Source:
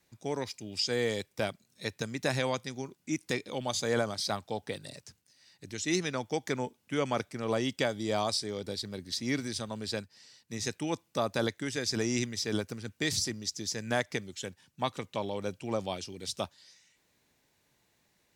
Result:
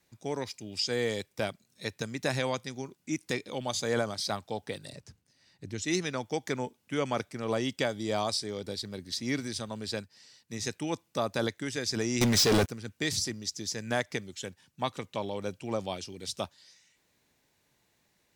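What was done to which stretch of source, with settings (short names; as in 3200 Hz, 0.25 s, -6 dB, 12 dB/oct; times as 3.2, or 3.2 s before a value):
4.93–5.82 tilt -2 dB/oct
12.21–12.69 sample leveller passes 5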